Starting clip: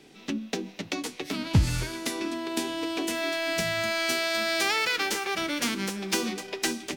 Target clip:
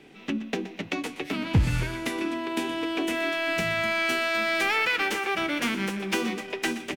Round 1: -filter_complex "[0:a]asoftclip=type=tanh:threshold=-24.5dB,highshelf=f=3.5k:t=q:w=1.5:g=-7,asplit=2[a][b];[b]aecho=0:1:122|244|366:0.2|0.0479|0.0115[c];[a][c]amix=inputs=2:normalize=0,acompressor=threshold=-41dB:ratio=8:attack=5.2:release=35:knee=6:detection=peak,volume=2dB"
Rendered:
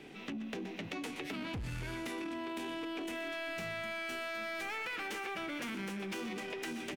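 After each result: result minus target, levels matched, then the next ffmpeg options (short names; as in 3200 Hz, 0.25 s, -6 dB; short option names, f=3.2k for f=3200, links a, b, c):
compressor: peak gain reduction +14.5 dB; soft clip: distortion +10 dB
-filter_complex "[0:a]asoftclip=type=tanh:threshold=-24.5dB,highshelf=f=3.5k:t=q:w=1.5:g=-7,asplit=2[a][b];[b]aecho=0:1:122|244|366:0.2|0.0479|0.0115[c];[a][c]amix=inputs=2:normalize=0,volume=2dB"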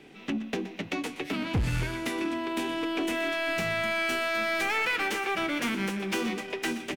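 soft clip: distortion +10 dB
-filter_complex "[0:a]asoftclip=type=tanh:threshold=-14.5dB,highshelf=f=3.5k:t=q:w=1.5:g=-7,asplit=2[a][b];[b]aecho=0:1:122|244|366:0.2|0.0479|0.0115[c];[a][c]amix=inputs=2:normalize=0,volume=2dB"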